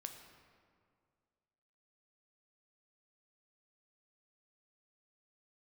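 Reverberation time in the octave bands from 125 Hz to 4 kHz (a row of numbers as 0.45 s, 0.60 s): 2.2 s, 2.2 s, 2.2 s, 2.0 s, 1.6 s, 1.2 s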